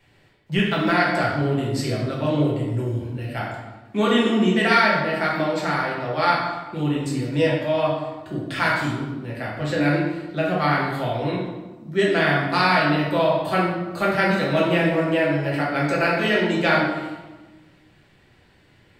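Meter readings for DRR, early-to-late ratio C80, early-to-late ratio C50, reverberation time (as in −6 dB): −5.5 dB, 4.0 dB, 1.5 dB, 1.2 s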